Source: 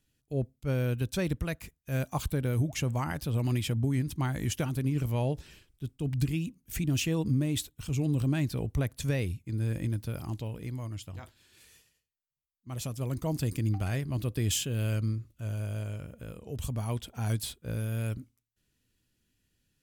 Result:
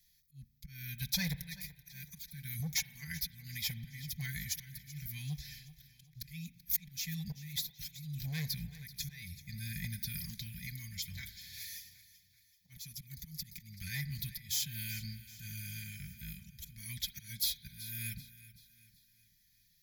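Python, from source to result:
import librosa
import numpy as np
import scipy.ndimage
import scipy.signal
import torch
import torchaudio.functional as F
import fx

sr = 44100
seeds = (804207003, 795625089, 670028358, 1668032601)

y = fx.auto_swell(x, sr, attack_ms=403.0)
y = y + 0.72 * np.pad(y, (int(4.5 * sr / 1000.0), 0))[:len(y)]
y = fx.auto_swell(y, sr, attack_ms=506.0, at=(4.42, 6.15), fade=0.02)
y = scipy.signal.sosfilt(scipy.signal.cheby1(3, 1.0, [160.0, 2000.0], 'bandstop', fs=sr, output='sos'), y)
y = np.clip(y, -10.0 ** (-30.0 / 20.0), 10.0 ** (-30.0 / 20.0))
y = fx.rev_spring(y, sr, rt60_s=1.5, pass_ms=(35,), chirp_ms=55, drr_db=15.5)
y = fx.leveller(y, sr, passes=1, at=(11.11, 12.82))
y = fx.high_shelf(y, sr, hz=6200.0, db=6.0)
y = fx.fixed_phaser(y, sr, hz=1900.0, stages=8)
y = fx.echo_feedback(y, sr, ms=383, feedback_pct=45, wet_db=-17.0)
y = fx.rider(y, sr, range_db=4, speed_s=2.0)
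y = fx.tilt_eq(y, sr, slope=1.5)
y = y * 10.0 ** (2.0 / 20.0)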